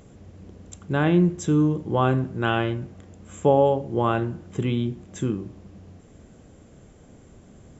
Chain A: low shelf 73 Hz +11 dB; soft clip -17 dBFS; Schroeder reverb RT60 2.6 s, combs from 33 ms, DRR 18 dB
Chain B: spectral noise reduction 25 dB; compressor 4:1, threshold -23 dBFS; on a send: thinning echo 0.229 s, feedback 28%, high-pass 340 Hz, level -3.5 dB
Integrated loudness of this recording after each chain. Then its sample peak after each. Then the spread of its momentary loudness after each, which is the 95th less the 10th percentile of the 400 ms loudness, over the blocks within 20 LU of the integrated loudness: -25.5, -28.5 LUFS; -16.0, -12.0 dBFS; 19, 11 LU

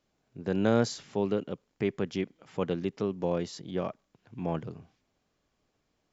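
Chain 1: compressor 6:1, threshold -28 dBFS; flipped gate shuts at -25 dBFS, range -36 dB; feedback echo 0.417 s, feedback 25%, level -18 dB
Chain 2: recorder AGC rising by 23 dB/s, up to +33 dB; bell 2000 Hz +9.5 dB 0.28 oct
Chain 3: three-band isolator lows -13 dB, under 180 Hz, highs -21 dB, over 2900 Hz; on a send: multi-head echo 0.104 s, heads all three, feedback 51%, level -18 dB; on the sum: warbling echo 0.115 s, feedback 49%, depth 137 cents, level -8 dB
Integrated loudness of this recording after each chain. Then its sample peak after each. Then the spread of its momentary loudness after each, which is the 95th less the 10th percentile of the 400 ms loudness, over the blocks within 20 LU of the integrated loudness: -47.0, -30.5, -32.5 LUFS; -21.5, -9.5, -13.5 dBFS; 19, 17, 14 LU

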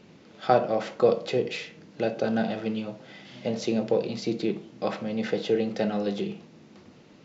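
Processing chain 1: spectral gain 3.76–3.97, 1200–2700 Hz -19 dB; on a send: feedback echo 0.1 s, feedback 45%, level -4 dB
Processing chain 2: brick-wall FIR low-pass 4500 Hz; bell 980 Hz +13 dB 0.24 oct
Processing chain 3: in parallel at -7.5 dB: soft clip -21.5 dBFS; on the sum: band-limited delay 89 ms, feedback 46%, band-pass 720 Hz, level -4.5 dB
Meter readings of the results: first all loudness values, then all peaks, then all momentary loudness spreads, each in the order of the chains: -26.5, -27.5, -25.0 LUFS; -7.0, -6.0, -6.5 dBFS; 13, 12, 12 LU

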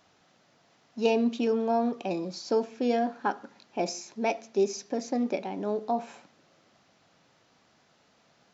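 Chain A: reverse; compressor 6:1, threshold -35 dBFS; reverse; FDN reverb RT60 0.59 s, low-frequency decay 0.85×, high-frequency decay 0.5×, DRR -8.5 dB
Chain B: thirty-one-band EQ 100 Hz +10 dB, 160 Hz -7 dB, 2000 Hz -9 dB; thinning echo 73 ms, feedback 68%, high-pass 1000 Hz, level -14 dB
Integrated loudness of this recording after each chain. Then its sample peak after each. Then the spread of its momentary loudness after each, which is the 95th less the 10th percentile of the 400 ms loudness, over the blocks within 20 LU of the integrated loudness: -29.5, -30.0 LUFS; -15.0, -14.0 dBFS; 6, 8 LU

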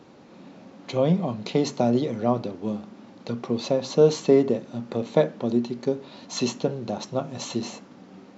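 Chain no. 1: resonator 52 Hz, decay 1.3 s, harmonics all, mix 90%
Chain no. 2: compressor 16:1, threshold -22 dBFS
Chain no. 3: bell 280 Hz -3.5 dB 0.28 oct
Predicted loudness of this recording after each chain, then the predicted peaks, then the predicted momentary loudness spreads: -37.0, -30.5, -25.5 LUFS; -17.5, -10.0, -5.0 dBFS; 13, 16, 14 LU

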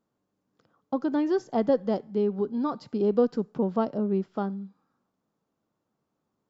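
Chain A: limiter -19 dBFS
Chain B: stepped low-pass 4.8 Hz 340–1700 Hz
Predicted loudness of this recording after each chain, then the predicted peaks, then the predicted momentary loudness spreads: -30.0, -23.0 LUFS; -19.0, -7.5 dBFS; 6, 11 LU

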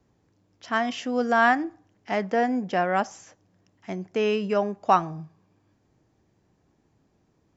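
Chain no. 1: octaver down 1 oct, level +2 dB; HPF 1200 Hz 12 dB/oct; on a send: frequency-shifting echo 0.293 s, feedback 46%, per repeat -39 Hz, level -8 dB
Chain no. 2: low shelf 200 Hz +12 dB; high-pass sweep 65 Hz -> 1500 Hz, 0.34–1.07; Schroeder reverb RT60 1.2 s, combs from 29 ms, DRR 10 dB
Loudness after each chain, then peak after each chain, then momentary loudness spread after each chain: -30.5, -24.0 LUFS; -11.5, -5.0 dBFS; 22, 17 LU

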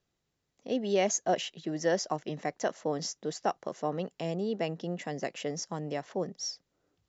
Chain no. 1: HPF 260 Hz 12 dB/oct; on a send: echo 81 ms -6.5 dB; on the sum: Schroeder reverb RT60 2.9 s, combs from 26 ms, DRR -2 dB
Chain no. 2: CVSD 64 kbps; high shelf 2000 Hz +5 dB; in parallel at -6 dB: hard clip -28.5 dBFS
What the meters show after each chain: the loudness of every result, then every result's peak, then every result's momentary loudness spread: -29.0, -29.5 LUFS; -11.5, -13.0 dBFS; 8, 8 LU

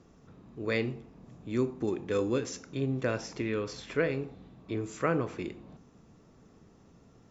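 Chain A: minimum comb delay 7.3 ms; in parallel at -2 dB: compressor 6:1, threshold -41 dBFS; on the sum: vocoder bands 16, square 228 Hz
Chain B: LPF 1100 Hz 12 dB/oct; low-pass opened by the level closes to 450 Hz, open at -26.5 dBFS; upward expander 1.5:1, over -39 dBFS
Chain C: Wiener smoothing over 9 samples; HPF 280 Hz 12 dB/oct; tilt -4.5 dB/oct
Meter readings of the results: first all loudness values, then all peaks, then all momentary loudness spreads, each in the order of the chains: -34.5, -35.5, -29.0 LUFS; -19.0, -17.0, -12.0 dBFS; 18, 11, 13 LU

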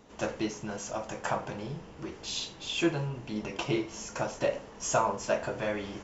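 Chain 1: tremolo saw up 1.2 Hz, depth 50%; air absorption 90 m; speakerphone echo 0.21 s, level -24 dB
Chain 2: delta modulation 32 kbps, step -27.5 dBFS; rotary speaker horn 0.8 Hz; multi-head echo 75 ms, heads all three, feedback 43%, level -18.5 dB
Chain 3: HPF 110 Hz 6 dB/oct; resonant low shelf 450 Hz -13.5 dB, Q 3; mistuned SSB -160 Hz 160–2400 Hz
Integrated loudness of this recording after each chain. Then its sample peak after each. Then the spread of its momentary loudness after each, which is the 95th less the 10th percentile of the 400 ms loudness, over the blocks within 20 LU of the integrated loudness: -36.0, -33.5, -30.5 LUFS; -14.0, -17.0, -8.0 dBFS; 10, 5, 22 LU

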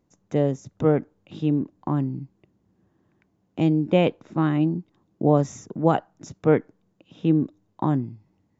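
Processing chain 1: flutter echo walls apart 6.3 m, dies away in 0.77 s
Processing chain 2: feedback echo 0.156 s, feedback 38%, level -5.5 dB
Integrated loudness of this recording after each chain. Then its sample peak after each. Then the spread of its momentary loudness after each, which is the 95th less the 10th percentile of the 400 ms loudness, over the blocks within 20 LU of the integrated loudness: -21.5, -23.5 LUFS; -1.5, -5.0 dBFS; 10, 11 LU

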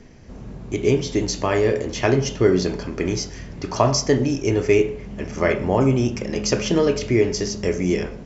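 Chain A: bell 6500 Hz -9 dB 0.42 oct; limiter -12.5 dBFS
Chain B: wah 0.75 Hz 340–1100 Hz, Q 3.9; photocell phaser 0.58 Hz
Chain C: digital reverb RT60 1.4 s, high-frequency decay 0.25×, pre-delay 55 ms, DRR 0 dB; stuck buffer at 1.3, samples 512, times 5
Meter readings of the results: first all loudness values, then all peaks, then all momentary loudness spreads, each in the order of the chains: -24.0, -32.5, -17.5 LUFS; -12.5, -10.5, -2.0 dBFS; 10, 17, 6 LU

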